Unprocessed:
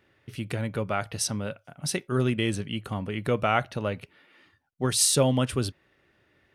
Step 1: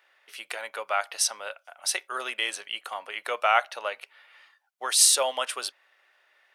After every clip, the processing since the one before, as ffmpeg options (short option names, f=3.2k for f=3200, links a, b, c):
-af "highpass=f=670:w=0.5412,highpass=f=670:w=1.3066,volume=4dB"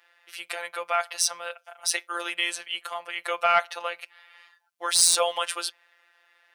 -af "afftfilt=real='hypot(re,im)*cos(PI*b)':imag='0':win_size=1024:overlap=0.75,acontrast=83,lowshelf=f=250:g=-5.5,volume=-1.5dB"